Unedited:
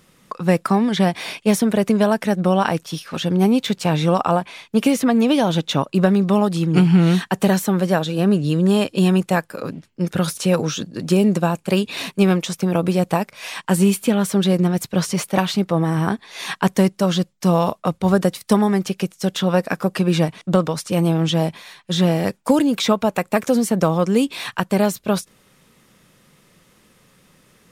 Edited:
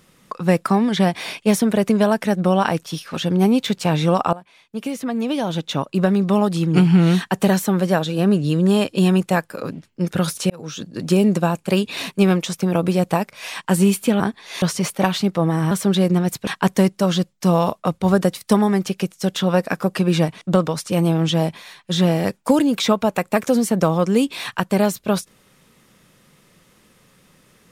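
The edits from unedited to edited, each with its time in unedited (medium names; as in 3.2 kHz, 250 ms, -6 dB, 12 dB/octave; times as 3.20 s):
4.33–6.50 s: fade in, from -20 dB
10.50–10.99 s: fade in
14.20–14.96 s: swap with 16.05–16.47 s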